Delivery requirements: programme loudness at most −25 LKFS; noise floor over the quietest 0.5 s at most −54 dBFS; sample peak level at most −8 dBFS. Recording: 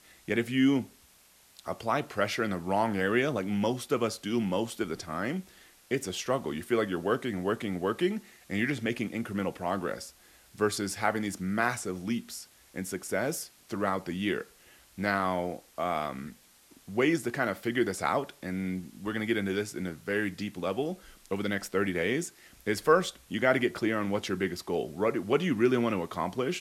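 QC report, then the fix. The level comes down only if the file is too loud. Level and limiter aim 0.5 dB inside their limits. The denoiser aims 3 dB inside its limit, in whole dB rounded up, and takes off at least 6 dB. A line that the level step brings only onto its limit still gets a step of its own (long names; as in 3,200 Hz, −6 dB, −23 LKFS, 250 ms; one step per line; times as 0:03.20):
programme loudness −30.5 LKFS: in spec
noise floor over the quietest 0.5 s −60 dBFS: in spec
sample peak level −11.0 dBFS: in spec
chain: no processing needed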